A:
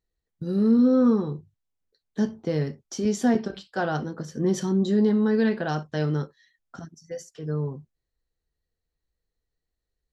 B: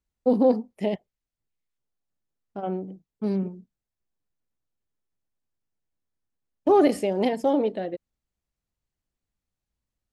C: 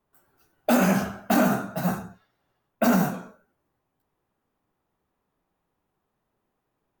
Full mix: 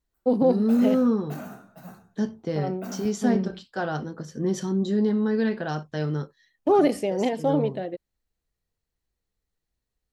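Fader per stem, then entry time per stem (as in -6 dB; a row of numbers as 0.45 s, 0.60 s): -2.0 dB, -1.0 dB, -18.0 dB; 0.00 s, 0.00 s, 0.00 s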